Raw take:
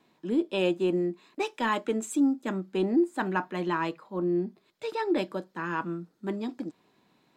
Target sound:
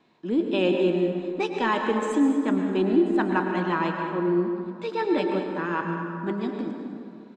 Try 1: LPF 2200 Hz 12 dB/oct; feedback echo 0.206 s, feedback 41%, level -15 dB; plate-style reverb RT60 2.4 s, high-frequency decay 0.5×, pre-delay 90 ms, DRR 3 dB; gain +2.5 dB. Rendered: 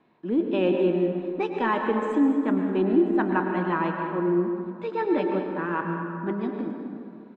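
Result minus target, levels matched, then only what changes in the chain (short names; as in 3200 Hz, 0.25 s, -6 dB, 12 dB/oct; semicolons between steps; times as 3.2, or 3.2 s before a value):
4000 Hz band -7.0 dB
change: LPF 5200 Hz 12 dB/oct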